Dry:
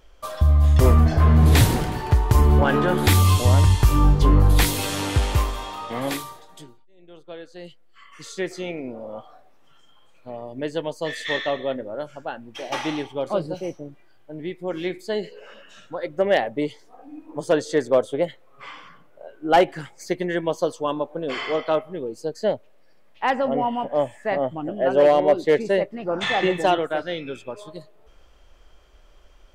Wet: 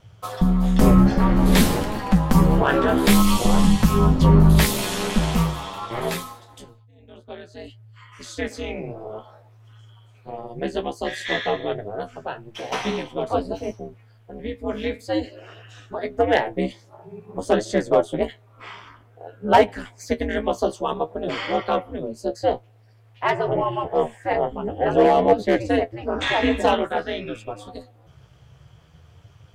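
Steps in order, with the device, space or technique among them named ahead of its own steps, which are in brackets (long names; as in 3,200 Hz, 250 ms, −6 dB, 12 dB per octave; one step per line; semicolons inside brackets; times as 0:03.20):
alien voice (ring modulation 110 Hz; flanger 0.51 Hz, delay 9.3 ms, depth 6.4 ms, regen +39%)
level +7.5 dB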